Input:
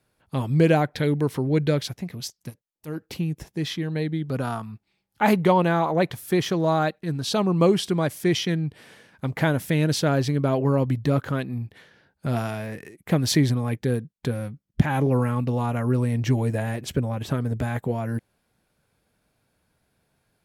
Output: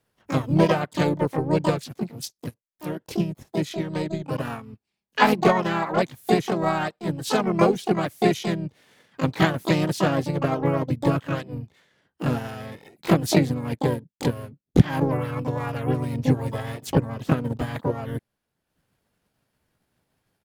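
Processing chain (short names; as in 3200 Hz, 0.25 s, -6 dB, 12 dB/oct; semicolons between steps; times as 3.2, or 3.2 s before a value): transient shaper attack +9 dB, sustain -6 dB; harmoniser -5 st -13 dB, +3 st -3 dB, +12 st -5 dB; gain -6 dB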